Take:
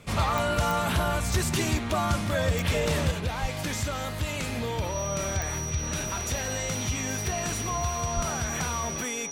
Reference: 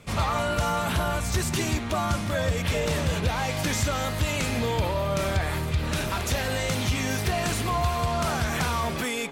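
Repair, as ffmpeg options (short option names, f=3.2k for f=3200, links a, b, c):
-filter_complex "[0:a]adeclick=t=4,bandreject=f=5.8k:w=30,asplit=3[a][b][c];[a]afade=t=out:st=3.41:d=0.02[d];[b]highpass=f=140:w=0.5412,highpass=f=140:w=1.3066,afade=t=in:st=3.41:d=0.02,afade=t=out:st=3.53:d=0.02[e];[c]afade=t=in:st=3.53:d=0.02[f];[d][e][f]amix=inputs=3:normalize=0,asplit=3[g][h][i];[g]afade=t=out:st=8.15:d=0.02[j];[h]highpass=f=140:w=0.5412,highpass=f=140:w=1.3066,afade=t=in:st=8.15:d=0.02,afade=t=out:st=8.27:d=0.02[k];[i]afade=t=in:st=8.27:d=0.02[l];[j][k][l]amix=inputs=3:normalize=0,asetnsamples=n=441:p=0,asendcmd='3.11 volume volume 4.5dB',volume=0dB"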